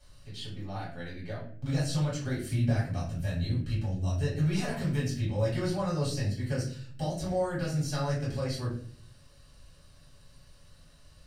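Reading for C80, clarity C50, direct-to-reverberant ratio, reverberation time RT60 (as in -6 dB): 9.5 dB, 5.0 dB, -8.0 dB, 0.50 s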